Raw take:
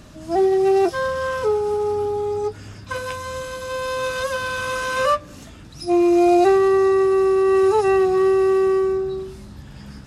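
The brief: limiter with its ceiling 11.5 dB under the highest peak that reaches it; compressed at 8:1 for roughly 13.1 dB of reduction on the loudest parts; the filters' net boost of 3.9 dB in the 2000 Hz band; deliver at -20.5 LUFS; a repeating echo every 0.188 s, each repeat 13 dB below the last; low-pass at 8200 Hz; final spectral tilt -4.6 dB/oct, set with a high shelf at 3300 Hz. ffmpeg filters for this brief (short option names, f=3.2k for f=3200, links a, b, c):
-af "lowpass=8.2k,equalizer=f=2k:t=o:g=4,highshelf=f=3.3k:g=5,acompressor=threshold=-26dB:ratio=8,alimiter=level_in=3.5dB:limit=-24dB:level=0:latency=1,volume=-3.5dB,aecho=1:1:188|376|564:0.224|0.0493|0.0108,volume=13dB"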